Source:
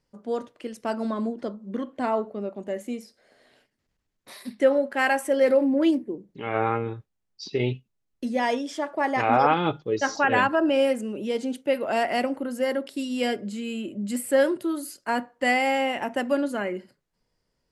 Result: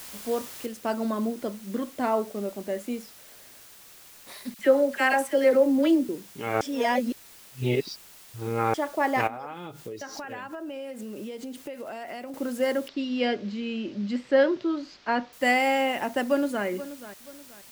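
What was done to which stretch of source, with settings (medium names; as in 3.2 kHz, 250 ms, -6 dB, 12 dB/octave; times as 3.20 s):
0.66 s: noise floor step -42 dB -50 dB
4.54–6.09 s: phase dispersion lows, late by 51 ms, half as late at 1.3 kHz
6.61–8.74 s: reverse
9.27–12.34 s: compression 12:1, threshold -33 dBFS
12.88–15.33 s: inverse Chebyshev low-pass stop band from 9.2 kHz
16.24–16.65 s: echo throw 480 ms, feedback 35%, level -14 dB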